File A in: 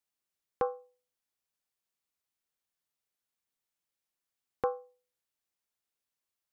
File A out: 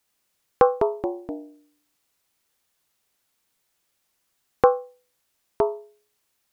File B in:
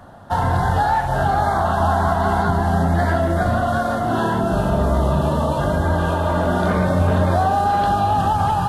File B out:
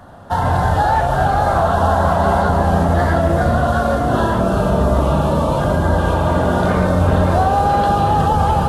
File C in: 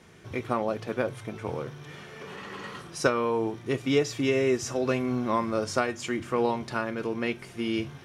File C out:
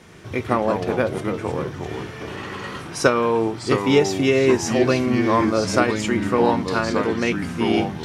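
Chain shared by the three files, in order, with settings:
delay with pitch and tempo change per echo 87 ms, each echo −3 semitones, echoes 3, each echo −6 dB
normalise the peak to −2 dBFS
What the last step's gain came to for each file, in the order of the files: +14.5, +2.0, +7.0 decibels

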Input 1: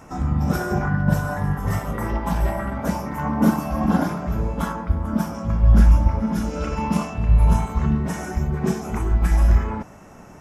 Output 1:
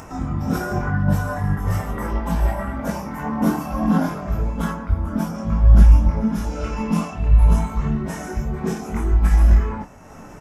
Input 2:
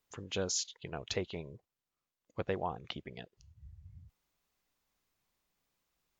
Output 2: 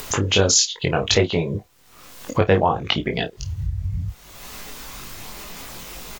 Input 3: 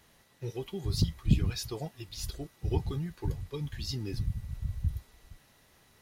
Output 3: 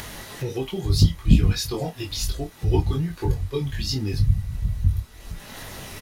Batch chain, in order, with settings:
multi-voice chorus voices 4, 0.67 Hz, delay 21 ms, depth 2.5 ms
upward compression, threshold −35 dBFS
double-tracking delay 30 ms −13 dB
normalise the peak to −2 dBFS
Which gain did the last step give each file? +2.5, +21.0, +12.0 decibels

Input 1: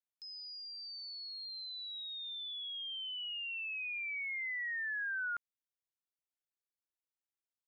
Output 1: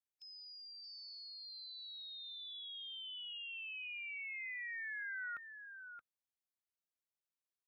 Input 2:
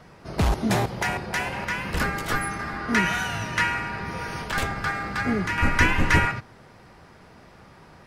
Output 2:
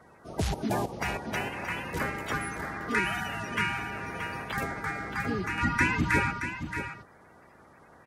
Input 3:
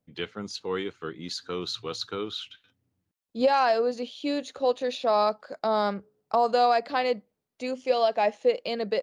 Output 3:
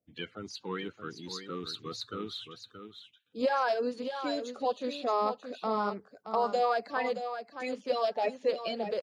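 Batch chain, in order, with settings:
spectral magnitudes quantised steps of 30 dB
high-pass filter 61 Hz
single-tap delay 624 ms −9 dB
level −5.5 dB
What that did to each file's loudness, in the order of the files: −6.0, −5.5, −6.0 LU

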